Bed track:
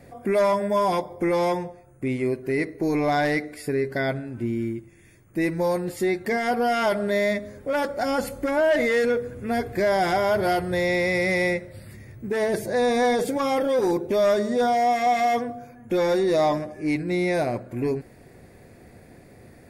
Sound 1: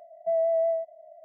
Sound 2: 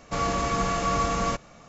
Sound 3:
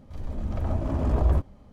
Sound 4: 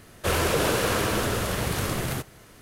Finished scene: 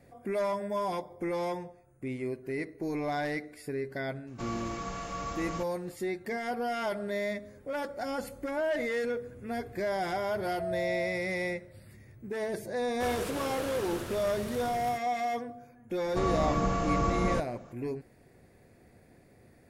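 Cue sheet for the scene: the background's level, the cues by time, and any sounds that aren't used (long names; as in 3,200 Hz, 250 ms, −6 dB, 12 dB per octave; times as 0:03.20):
bed track −10 dB
0:04.27: mix in 2 −12 dB
0:10.33: mix in 1 −10 dB
0:12.76: mix in 4 −14 dB
0:16.04: mix in 2 −5.5 dB + tilt shelving filter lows +5.5 dB, about 1,100 Hz
not used: 3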